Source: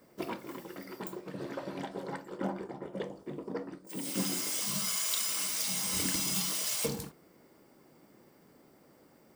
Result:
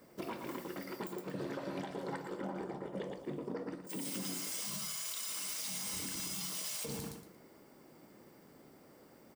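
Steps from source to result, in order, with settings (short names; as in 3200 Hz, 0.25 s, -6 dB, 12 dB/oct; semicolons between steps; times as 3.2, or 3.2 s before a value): on a send: feedback echo 0.115 s, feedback 27%, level -10 dB; on the sum: compressor 4:1, threshold -36 dBFS, peak gain reduction 8.5 dB; limiter -31 dBFS, peak gain reduction 6.5 dB; gain +1 dB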